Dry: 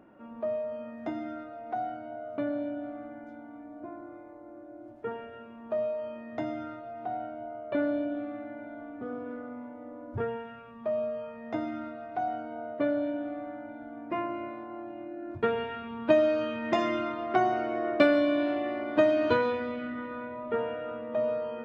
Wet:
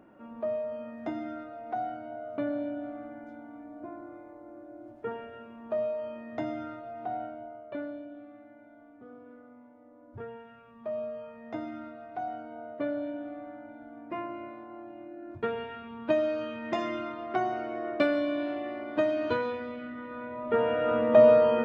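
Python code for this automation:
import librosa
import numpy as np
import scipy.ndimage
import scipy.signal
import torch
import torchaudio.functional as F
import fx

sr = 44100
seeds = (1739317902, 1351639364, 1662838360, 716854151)

y = fx.gain(x, sr, db=fx.line((7.23, 0.0), (8.03, -12.0), (9.91, -12.0), (10.96, -4.0), (19.99, -4.0), (20.45, 2.0), (20.99, 12.0)))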